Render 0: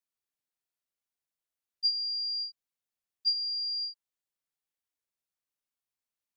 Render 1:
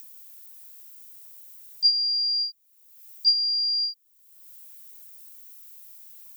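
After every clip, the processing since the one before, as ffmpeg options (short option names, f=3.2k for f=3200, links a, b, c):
-af "aemphasis=mode=production:type=riaa,acompressor=mode=upward:threshold=-27dB:ratio=2.5"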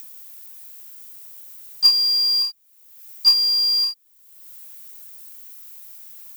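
-af "acrusher=bits=4:mode=log:mix=0:aa=0.000001,volume=5.5dB"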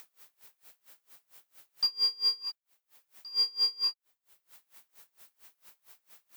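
-filter_complex "[0:a]asplit=2[a][b];[b]highpass=f=720:p=1,volume=8dB,asoftclip=type=tanh:threshold=-5.5dB[c];[a][c]amix=inputs=2:normalize=0,lowpass=f=1.4k:p=1,volume=-6dB,aeval=exprs='val(0)*pow(10,-28*(0.5-0.5*cos(2*PI*4.4*n/s))/20)':c=same,volume=2.5dB"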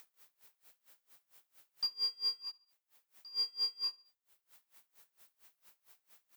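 -af "aecho=1:1:71|142|213:0.0708|0.0354|0.0177,volume=-7dB"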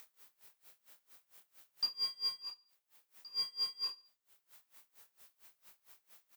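-filter_complex "[0:a]asplit=2[a][b];[b]adelay=25,volume=-6dB[c];[a][c]amix=inputs=2:normalize=0,volume=1.5dB"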